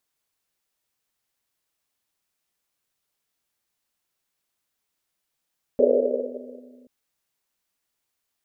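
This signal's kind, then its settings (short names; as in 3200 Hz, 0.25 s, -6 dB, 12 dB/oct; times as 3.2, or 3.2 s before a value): Risset drum length 1.08 s, pitch 250 Hz, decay 2.77 s, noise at 500 Hz, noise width 200 Hz, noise 80%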